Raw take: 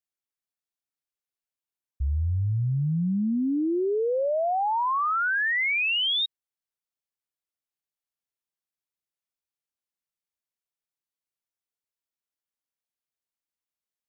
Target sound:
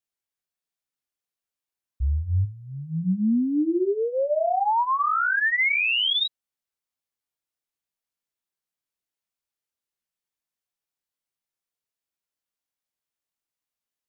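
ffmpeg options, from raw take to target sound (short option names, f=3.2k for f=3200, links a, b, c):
-filter_complex "[0:a]flanger=delay=16.5:depth=6.3:speed=1.4,asplit=3[a][b][c];[a]afade=t=out:st=2.44:d=0.02[d];[b]lowshelf=f=150:g=-11,afade=t=in:st=2.44:d=0.02,afade=t=out:st=3.02:d=0.02[e];[c]afade=t=in:st=3.02:d=0.02[f];[d][e][f]amix=inputs=3:normalize=0,volume=5dB"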